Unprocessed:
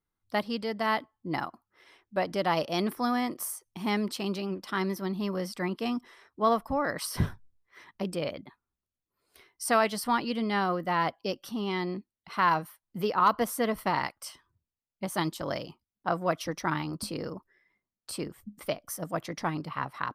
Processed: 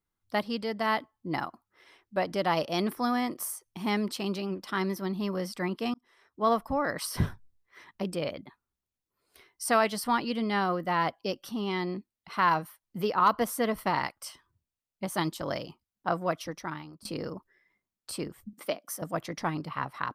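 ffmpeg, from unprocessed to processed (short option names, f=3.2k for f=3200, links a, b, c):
-filter_complex "[0:a]asettb=1/sr,asplit=3[a][b][c];[a]atrim=end=18.534[d];[b]atrim=start=18.53:end=19.02,asetpts=PTS-STARTPTS,afade=t=in:d=0.004:c=qsin,afade=t=out:st=0.486:d=0.004:c=qsin,highpass=f=200:w=0.5412,highpass=f=200:w=1.3066[e];[c]atrim=start=19.016[f];[d][e]acrossfade=d=0.004:c1=hsin:c2=qsin[g];[g][f]acrossfade=d=0.004:c1=qsin:c2=hsin,asplit=3[h][i][j];[h]atrim=end=5.94,asetpts=PTS-STARTPTS,afade=t=out:st=5.936:d=0.004:c=hsin[k];[i]atrim=start=5.94:end=17.05,asetpts=PTS-STARTPTS,afade=t=in:d=0.58,afade=t=out:st=10.19:d=0.92:silence=0.0944061[l];[j]atrim=start=17.05,asetpts=PTS-STARTPTS,afade=t=in:d=0.004:c=hsin:silence=0.0944061[m];[k][l][m]concat=n=3:v=0:a=1"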